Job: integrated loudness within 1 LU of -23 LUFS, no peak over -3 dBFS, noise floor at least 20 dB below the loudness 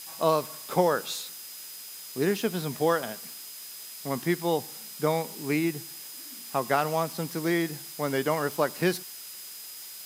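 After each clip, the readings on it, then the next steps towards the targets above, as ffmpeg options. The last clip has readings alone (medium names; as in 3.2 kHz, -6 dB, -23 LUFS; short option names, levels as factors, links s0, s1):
steady tone 5 kHz; tone level -48 dBFS; noise floor -43 dBFS; noise floor target -50 dBFS; loudness -29.5 LUFS; peak level -9.0 dBFS; loudness target -23.0 LUFS
-> -af "bandreject=f=5000:w=30"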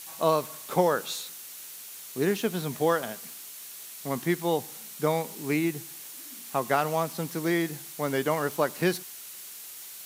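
steady tone not found; noise floor -43 dBFS; noise floor target -49 dBFS
-> -af "afftdn=nr=6:nf=-43"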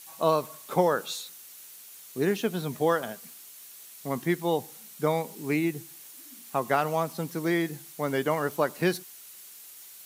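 noise floor -48 dBFS; noise floor target -49 dBFS
-> -af "afftdn=nr=6:nf=-48"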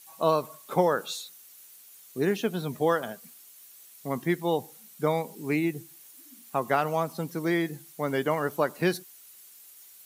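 noise floor -52 dBFS; loudness -28.5 LUFS; peak level -9.0 dBFS; loudness target -23.0 LUFS
-> -af "volume=1.88"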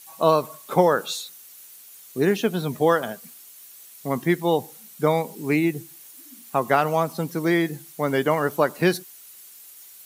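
loudness -23.0 LUFS; peak level -3.5 dBFS; noise floor -46 dBFS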